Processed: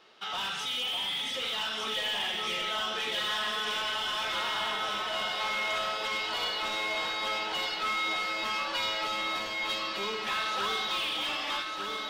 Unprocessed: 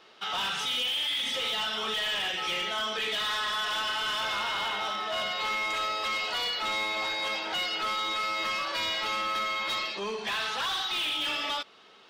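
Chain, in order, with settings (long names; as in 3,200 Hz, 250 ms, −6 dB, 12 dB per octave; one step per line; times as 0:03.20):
delay that swaps between a low-pass and a high-pass 602 ms, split 990 Hz, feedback 79%, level −3 dB
level −3 dB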